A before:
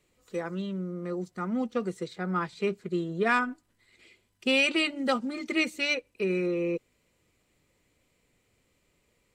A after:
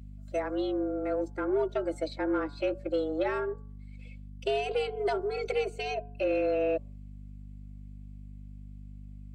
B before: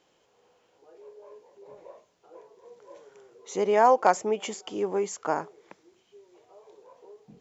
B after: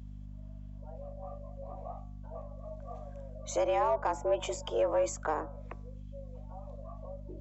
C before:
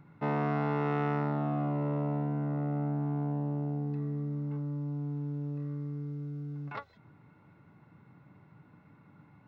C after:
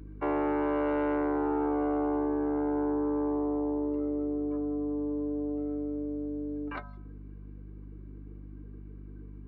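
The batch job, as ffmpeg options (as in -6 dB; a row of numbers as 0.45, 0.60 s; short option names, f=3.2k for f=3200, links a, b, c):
-filter_complex "[0:a]afreqshift=150,afftdn=nr=13:nf=-51,acrossover=split=300|860[a][b][c];[b]alimiter=level_in=2dB:limit=-24dB:level=0:latency=1:release=315,volume=-2dB[d];[c]acompressor=threshold=-41dB:ratio=10[e];[a][d][e]amix=inputs=3:normalize=0,aeval=exprs='val(0)+0.00447*(sin(2*PI*50*n/s)+sin(2*PI*2*50*n/s)/2+sin(2*PI*3*50*n/s)/3+sin(2*PI*4*50*n/s)/4+sin(2*PI*5*50*n/s)/5)':c=same,bandreject=f=142.5:t=h:w=4,bandreject=f=285:t=h:w=4,bandreject=f=427.5:t=h:w=4,bandreject=f=570:t=h:w=4,bandreject=f=712.5:t=h:w=4,bandreject=f=855:t=h:w=4,bandreject=f=997.5:t=h:w=4,bandreject=f=1.14k:t=h:w=4,bandreject=f=1.2825k:t=h:w=4,bandreject=f=1.425k:t=h:w=4,bandreject=f=1.5675k:t=h:w=4,asplit=2[f][g];[g]asoftclip=type=tanh:threshold=-29dB,volume=-5.5dB[h];[f][h]amix=inputs=2:normalize=0"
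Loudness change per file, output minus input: -2.0, -9.0, +3.0 LU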